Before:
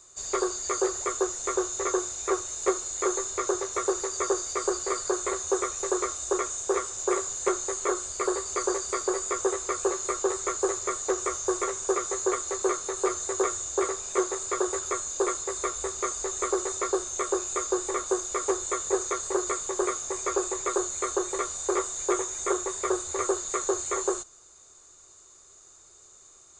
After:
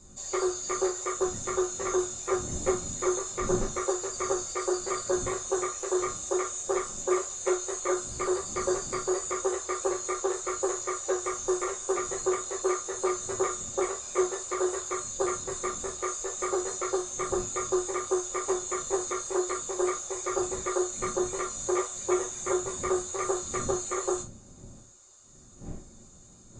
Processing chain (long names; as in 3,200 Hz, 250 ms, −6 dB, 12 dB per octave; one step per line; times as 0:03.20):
spectral magnitudes quantised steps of 15 dB
wind on the microphone 190 Hz −44 dBFS
reverb whose tail is shaped and stops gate 90 ms falling, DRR 0 dB
level −4.5 dB